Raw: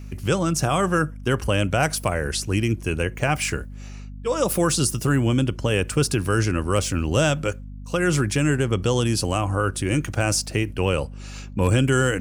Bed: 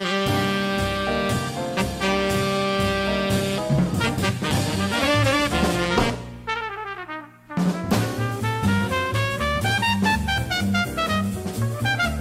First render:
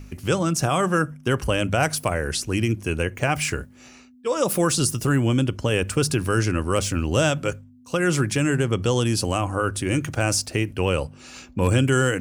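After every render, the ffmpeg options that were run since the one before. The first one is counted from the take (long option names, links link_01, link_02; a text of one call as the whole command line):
ffmpeg -i in.wav -af "bandreject=frequency=50:width_type=h:width=4,bandreject=frequency=100:width_type=h:width=4,bandreject=frequency=150:width_type=h:width=4,bandreject=frequency=200:width_type=h:width=4" out.wav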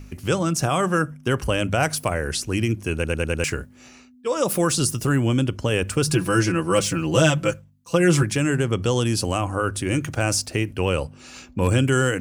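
ffmpeg -i in.wav -filter_complex "[0:a]asettb=1/sr,asplit=3[link_01][link_02][link_03];[link_01]atrim=end=6.074[link_04];[link_02]atrim=start=6.07:end=8.23,asetpts=PTS-STARTPTS,afade=type=in:duration=0.004:curve=qsin,afade=type=out:start_time=2.156:duration=0.004:curve=qsin,aecho=1:1:6:0.9,atrim=end_sample=95256[link_05];[link_03]atrim=start=8.226[link_06];[link_04][link_05]acrossfade=duration=0.004:curve1=hsin:curve2=qsin[link_07];[link_07][link_06]acrossfade=duration=0.004:curve1=qsin:curve2=hsin,asplit=6[link_08][link_09][link_10][link_11][link_12][link_13];[link_08]atrim=end=3.042[link_14];[link_09]atrim=start=2.938:end=3.042[link_15];[link_10]atrim=start=2.938:end=3.042[link_16];[link_11]atrim=start=2.938:end=3.042[link_17];[link_12]atrim=start=2.938:end=3.042[link_18];[link_13]atrim=start=3.438[link_19];[link_14][link_15]acrossfade=duration=0.004:curve1=hsin:curve2=hsin[link_20];[link_20][link_16]acrossfade=duration=0.004:curve1=hsin:curve2=hsin[link_21];[link_21][link_17]acrossfade=duration=0.004:curve1=hsin:curve2=hsin[link_22];[link_22][link_18]acrossfade=duration=0.004:curve1=hsin:curve2=hsin[link_23];[link_23][link_19]acrossfade=duration=0.004:curve1=hsin:curve2=hsin" out.wav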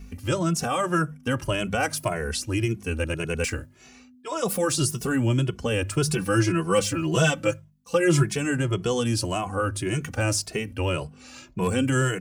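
ffmpeg -i in.wav -filter_complex "[0:a]asplit=2[link_01][link_02];[link_02]adelay=2.3,afreqshift=1.8[link_03];[link_01][link_03]amix=inputs=2:normalize=1" out.wav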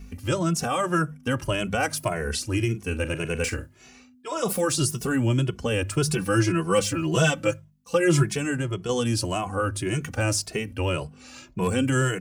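ffmpeg -i in.wav -filter_complex "[0:a]asettb=1/sr,asplit=3[link_01][link_02][link_03];[link_01]atrim=end=2.134[link_04];[link_02]atrim=start=2.13:end=4.61,asetpts=PTS-STARTPTS,afade=type=in:duration=0.004:curve=qsin,afade=type=out:start_time=2.476:duration=0.004:curve=qsin,asplit=2[link_05][link_06];[link_06]adelay=42,volume=-13dB[link_07];[link_05][link_07]amix=inputs=2:normalize=0,atrim=end_sample=109368[link_08];[link_03]atrim=start=4.606[link_09];[link_04][link_08]acrossfade=duration=0.004:curve1=hsin:curve2=qsin[link_10];[link_10][link_09]acrossfade=duration=0.004:curve1=qsin:curve2=hsin,asplit=2[link_11][link_12];[link_11]atrim=end=8.89,asetpts=PTS-STARTPTS,afade=type=out:start_time=8.32:duration=0.57:silence=0.501187[link_13];[link_12]atrim=start=8.89,asetpts=PTS-STARTPTS,afade=type=in:duration=0.004:curve=hsin:silence=0.501187[link_14];[link_13][link_14]concat=n=2:v=0:a=1" out.wav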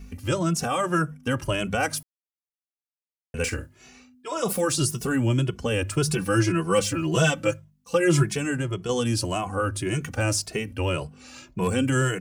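ffmpeg -i in.wav -filter_complex "[0:a]asplit=3[link_01][link_02][link_03];[link_01]atrim=end=2.03,asetpts=PTS-STARTPTS,afade=type=out:start_time=2.026:duration=0.004:curve=hsin[link_04];[link_02]atrim=start=2.03:end=3.34,asetpts=PTS-STARTPTS,volume=0[link_05];[link_03]atrim=start=3.34,asetpts=PTS-STARTPTS,afade=type=in:duration=0.004:curve=hsin[link_06];[link_04][link_05][link_06]concat=n=3:v=0:a=1" out.wav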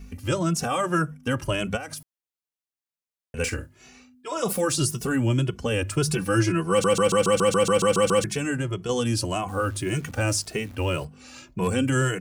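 ffmpeg -i in.wav -filter_complex "[0:a]asplit=3[link_01][link_02][link_03];[link_01]afade=type=out:start_time=1.76:duration=0.02[link_04];[link_02]acompressor=threshold=-31dB:ratio=16:attack=3.2:release=140:knee=1:detection=peak,afade=type=in:start_time=1.76:duration=0.02,afade=type=out:start_time=3.36:duration=0.02[link_05];[link_03]afade=type=in:start_time=3.36:duration=0.02[link_06];[link_04][link_05][link_06]amix=inputs=3:normalize=0,asettb=1/sr,asplit=3[link_07][link_08][link_09];[link_07]atrim=end=9.484[link_10];[link_08]atrim=start=9.48:end=11.05,asetpts=PTS-STARTPTS,afade=type=in:duration=0.004:curve=qsin,afade=type=out:start_time=1.566:duration=0.004:curve=qsin,acrusher=bits=9:dc=4:mix=0:aa=0.000001[link_11];[link_09]atrim=start=11.046[link_12];[link_10][link_11]acrossfade=duration=0.004:curve1=hsin:curve2=qsin[link_13];[link_13][link_12]acrossfade=duration=0.004:curve1=qsin:curve2=hsin,asplit=12[link_14][link_15][link_16][link_17][link_18][link_19][link_20][link_21][link_22][link_23][link_24][link_25];[link_14]atrim=end=6.842[link_26];[link_15]atrim=start=6.698:end=6.842[link_27];[link_16]atrim=start=6.698:end=6.842[link_28];[link_17]atrim=start=6.698:end=6.842[link_29];[link_18]atrim=start=6.698:end=6.842[link_30];[link_19]atrim=start=6.698:end=6.842[link_31];[link_20]atrim=start=6.698:end=6.842[link_32];[link_21]atrim=start=6.698:end=6.842[link_33];[link_22]atrim=start=6.698:end=6.842[link_34];[link_23]atrim=start=6.698:end=6.842[link_35];[link_24]atrim=start=6.698:end=6.842[link_36];[link_25]atrim=start=8.238[link_37];[link_26][link_27]acrossfade=duration=0.004:curve1=hsin:curve2=hsin[link_38];[link_38][link_28]acrossfade=duration=0.004:curve1=hsin:curve2=hsin[link_39];[link_39][link_29]acrossfade=duration=0.004:curve1=hsin:curve2=hsin[link_40];[link_40][link_30]acrossfade=duration=0.004:curve1=hsin:curve2=hsin[link_41];[link_41][link_31]acrossfade=duration=0.004:curve1=hsin:curve2=hsin[link_42];[link_42][link_32]acrossfade=duration=0.004:curve1=hsin:curve2=hsin[link_43];[link_43][link_33]acrossfade=duration=0.004:curve1=hsin:curve2=hsin[link_44];[link_44][link_34]acrossfade=duration=0.004:curve1=hsin:curve2=hsin[link_45];[link_45][link_35]acrossfade=duration=0.004:curve1=hsin:curve2=hsin[link_46];[link_46][link_36]acrossfade=duration=0.004:curve1=hsin:curve2=hsin[link_47];[link_47][link_37]acrossfade=duration=0.004:curve1=hsin:curve2=hsin" out.wav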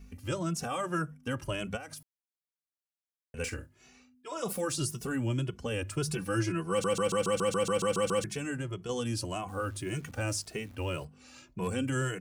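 ffmpeg -i in.wav -af "volume=-8.5dB" out.wav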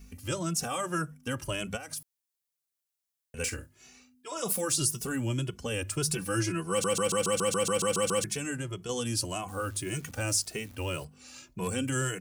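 ffmpeg -i in.wav -af "highshelf=frequency=4300:gain=10.5" out.wav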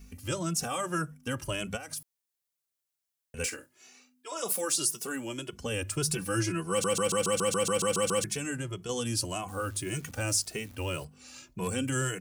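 ffmpeg -i in.wav -filter_complex "[0:a]asettb=1/sr,asplit=3[link_01][link_02][link_03];[link_01]atrim=end=3.464[link_04];[link_02]atrim=start=3.46:end=5.53,asetpts=PTS-STARTPTS,afade=type=in:duration=0.004:curve=qsin,afade=type=out:start_time=2.066:duration=0.004:curve=qsin,highpass=310[link_05];[link_03]atrim=start=5.526[link_06];[link_04][link_05]acrossfade=duration=0.004:curve1=hsin:curve2=qsin[link_07];[link_07][link_06]acrossfade=duration=0.004:curve1=qsin:curve2=hsin" out.wav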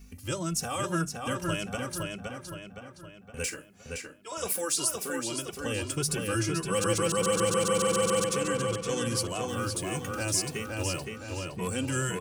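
ffmpeg -i in.wav -filter_complex "[0:a]asplit=2[link_01][link_02];[link_02]adelay=516,lowpass=frequency=4600:poles=1,volume=-3dB,asplit=2[link_03][link_04];[link_04]adelay=516,lowpass=frequency=4600:poles=1,volume=0.5,asplit=2[link_05][link_06];[link_06]adelay=516,lowpass=frequency=4600:poles=1,volume=0.5,asplit=2[link_07][link_08];[link_08]adelay=516,lowpass=frequency=4600:poles=1,volume=0.5,asplit=2[link_09][link_10];[link_10]adelay=516,lowpass=frequency=4600:poles=1,volume=0.5,asplit=2[link_11][link_12];[link_12]adelay=516,lowpass=frequency=4600:poles=1,volume=0.5,asplit=2[link_13][link_14];[link_14]adelay=516,lowpass=frequency=4600:poles=1,volume=0.5[link_15];[link_01][link_03][link_05][link_07][link_09][link_11][link_13][link_15]amix=inputs=8:normalize=0" out.wav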